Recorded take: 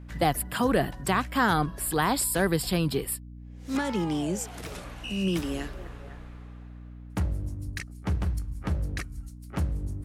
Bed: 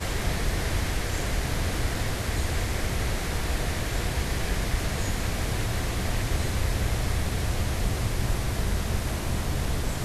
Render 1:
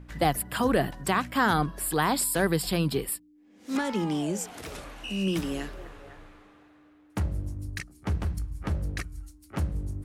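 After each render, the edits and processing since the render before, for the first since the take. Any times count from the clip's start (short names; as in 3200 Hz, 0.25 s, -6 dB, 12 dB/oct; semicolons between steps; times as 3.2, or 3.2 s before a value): de-hum 60 Hz, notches 4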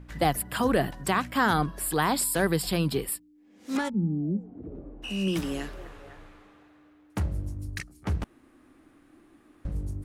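3.88–5.02 synth low-pass 170 Hz -> 390 Hz, resonance Q 2.1; 8.24–9.65 room tone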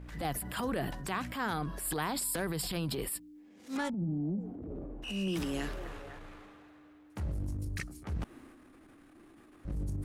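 compressor 6:1, threshold -30 dBFS, peak gain reduction 11.5 dB; transient shaper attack -10 dB, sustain +6 dB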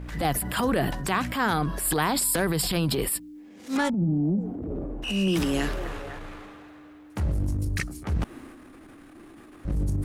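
gain +9.5 dB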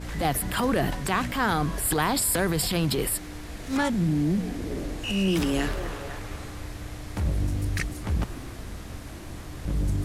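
add bed -11.5 dB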